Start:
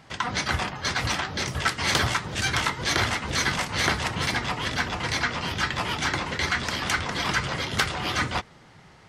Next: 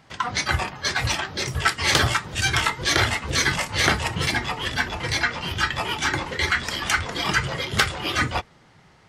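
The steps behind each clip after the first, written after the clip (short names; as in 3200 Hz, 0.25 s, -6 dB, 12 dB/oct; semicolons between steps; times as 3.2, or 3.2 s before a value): spectral noise reduction 7 dB; gain +4.5 dB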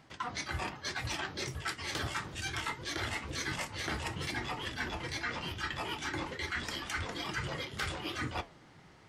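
bell 310 Hz +5.5 dB 0.52 oct; reverse; compressor 6:1, threshold -30 dBFS, peak gain reduction 16 dB; reverse; flange 1.1 Hz, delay 7.6 ms, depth 8.1 ms, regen -74%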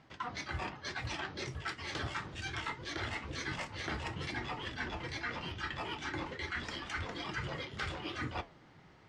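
air absorption 91 m; gain -1.5 dB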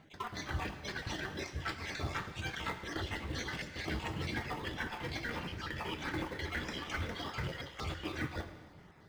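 random spectral dropouts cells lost 26%; in parallel at -8.5 dB: sample-and-hold 31×; on the sum: non-linear reverb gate 0.47 s falling, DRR 8.5 dB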